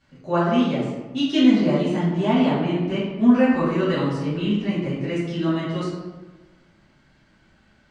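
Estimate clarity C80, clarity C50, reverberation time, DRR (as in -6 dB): 3.0 dB, 0.0 dB, 1.2 s, -12.0 dB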